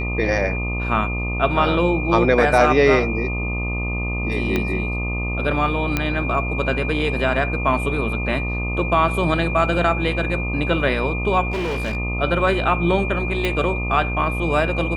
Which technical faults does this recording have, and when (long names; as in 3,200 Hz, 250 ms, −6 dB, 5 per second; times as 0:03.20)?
mains buzz 60 Hz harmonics 21 −25 dBFS
whistle 2,400 Hz −27 dBFS
0:04.56: click −8 dBFS
0:05.97: click −6 dBFS
0:11.51–0:11.97: clipping −20.5 dBFS
0:13.45: click −9 dBFS